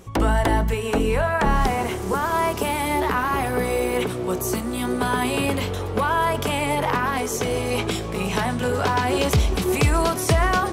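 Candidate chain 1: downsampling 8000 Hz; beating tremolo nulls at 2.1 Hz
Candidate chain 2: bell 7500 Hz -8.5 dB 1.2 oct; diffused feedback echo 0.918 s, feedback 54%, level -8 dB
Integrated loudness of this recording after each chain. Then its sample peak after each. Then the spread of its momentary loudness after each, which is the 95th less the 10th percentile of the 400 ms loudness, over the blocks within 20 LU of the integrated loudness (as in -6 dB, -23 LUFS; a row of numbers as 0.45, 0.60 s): -25.5, -22.0 LUFS; -9.5, -8.0 dBFS; 7, 4 LU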